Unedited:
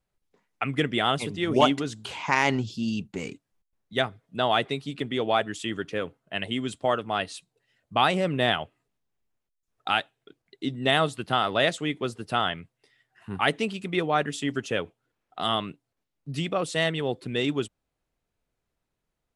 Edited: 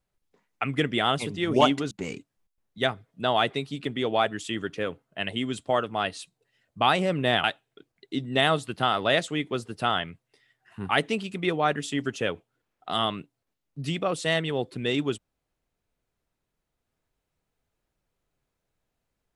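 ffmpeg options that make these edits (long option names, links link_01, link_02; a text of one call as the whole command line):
ffmpeg -i in.wav -filter_complex "[0:a]asplit=3[link_01][link_02][link_03];[link_01]atrim=end=1.912[link_04];[link_02]atrim=start=3.058:end=8.592[link_05];[link_03]atrim=start=9.938[link_06];[link_04][link_05]acrossfade=duration=0.004:curve1=hsin:curve2=hsin[link_07];[link_07][link_06]acrossfade=duration=0.004:curve1=hsin:curve2=hsin" out.wav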